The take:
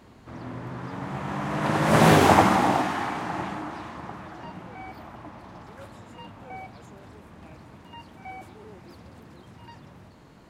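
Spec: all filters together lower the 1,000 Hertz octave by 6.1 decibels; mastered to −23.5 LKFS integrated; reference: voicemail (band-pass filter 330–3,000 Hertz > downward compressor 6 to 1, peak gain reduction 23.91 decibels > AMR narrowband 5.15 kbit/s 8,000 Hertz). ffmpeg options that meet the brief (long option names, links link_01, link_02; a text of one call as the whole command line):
ffmpeg -i in.wav -af "highpass=330,lowpass=3000,equalizer=frequency=1000:width_type=o:gain=-8,acompressor=threshold=-43dB:ratio=6,volume=28dB" -ar 8000 -c:a libopencore_amrnb -b:a 5150 out.amr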